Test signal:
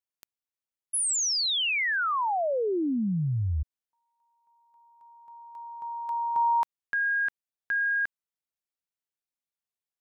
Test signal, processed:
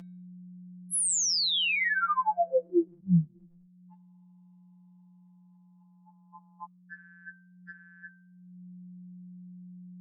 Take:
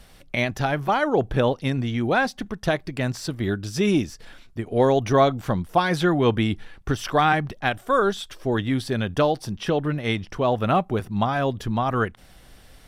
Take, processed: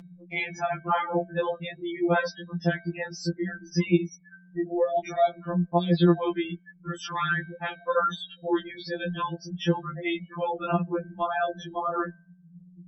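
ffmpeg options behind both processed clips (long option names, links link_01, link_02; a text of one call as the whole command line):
ffmpeg -i in.wav -af "aeval=exprs='val(0)+0.5*0.0251*sgn(val(0))':channel_layout=same,afftfilt=real='re*gte(hypot(re,im),0.0562)':imag='im*gte(hypot(re,im),0.0562)':win_size=1024:overlap=0.75,aeval=exprs='val(0)+0.00251*(sin(2*PI*60*n/s)+sin(2*PI*2*60*n/s)/2+sin(2*PI*3*60*n/s)/3+sin(2*PI*4*60*n/s)/4+sin(2*PI*5*60*n/s)/5)':channel_layout=same,highpass=frequency=86:width=0.5412,highpass=frequency=86:width=1.3066,alimiter=limit=-12dB:level=0:latency=1:release=274,acompressor=mode=upward:threshold=-31dB:ratio=2.5:attack=8.2:release=595:knee=2.83:detection=peak,bandreject=frequency=223.1:width_type=h:width=4,bandreject=frequency=446.2:width_type=h:width=4,bandreject=frequency=669.3:width_type=h:width=4,bandreject=frequency=892.4:width_type=h:width=4,bandreject=frequency=1115.5:width_type=h:width=4,bandreject=frequency=1338.6:width_type=h:width=4,bandreject=frequency=1561.7:width_type=h:width=4,bandreject=frequency=1784.8:width_type=h:width=4,bandreject=frequency=2007.9:width_type=h:width=4,bandreject=frequency=2231:width_type=h:width=4,bandreject=frequency=2454.1:width_type=h:width=4,bandreject=frequency=2677.2:width_type=h:width=4,bandreject=frequency=2900.3:width_type=h:width=4,bandreject=frequency=3123.4:width_type=h:width=4,bandreject=frequency=3346.5:width_type=h:width=4,bandreject=frequency=3569.6:width_type=h:width=4,bandreject=frequency=3792.7:width_type=h:width=4,afftfilt=real='re*2.83*eq(mod(b,8),0)':imag='im*2.83*eq(mod(b,8),0)':win_size=2048:overlap=0.75" out.wav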